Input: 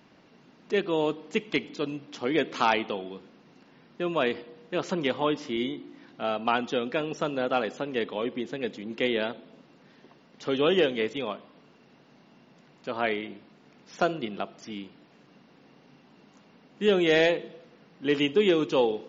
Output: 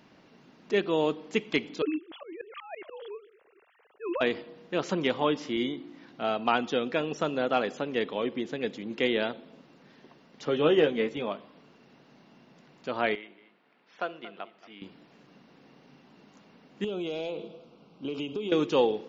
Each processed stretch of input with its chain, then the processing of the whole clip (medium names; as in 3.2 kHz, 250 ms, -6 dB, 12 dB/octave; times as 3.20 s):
1.82–4.21 s: formants replaced by sine waves + compressor with a negative ratio -28 dBFS, ratio -0.5 + slow attack 189 ms
10.45–11.32 s: treble shelf 2.8 kHz -9 dB + doubling 13 ms -6 dB
13.15–14.82 s: high-pass 1.3 kHz 6 dB/octave + distance through air 340 m + delay 229 ms -15.5 dB
16.84–18.52 s: Butterworth band-stop 1.8 kHz, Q 1.8 + compression 12:1, threshold -29 dBFS + distance through air 68 m
whole clip: none